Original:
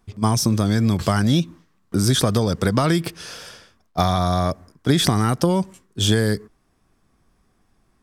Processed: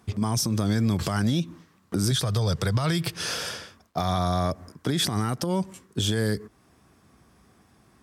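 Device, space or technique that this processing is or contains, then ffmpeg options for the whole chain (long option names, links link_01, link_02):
podcast mastering chain: -filter_complex "[0:a]asettb=1/sr,asplit=3[link_01][link_02][link_03];[link_01]atrim=end=2.114[link_04];[link_02]atrim=start=2.11:end=3.16,asetpts=PTS-STARTPTS,afade=type=in:duration=0.004:curve=qsin,afade=type=out:start_time=1.046:duration=0.004:curve=qsin,equalizer=frequency=125:width_type=o:width=1:gain=8,equalizer=frequency=250:width_type=o:width=1:gain=-11,equalizer=frequency=4000:width_type=o:width=1:gain=4[link_05];[link_03]atrim=start=3.156[link_06];[link_04][link_05]acrossfade=duration=0.004:curve1=hsin:curve2=qsin[link_07];[link_07][link_06]acrossfade=duration=0.004:curve1=qsin:curve2=hsin,highpass=frequency=62:width=0.5412,highpass=frequency=62:width=1.3066,acompressor=threshold=-31dB:ratio=2.5,alimiter=limit=-22dB:level=0:latency=1:release=122,volume=7.5dB" -ar 48000 -c:a libmp3lame -b:a 96k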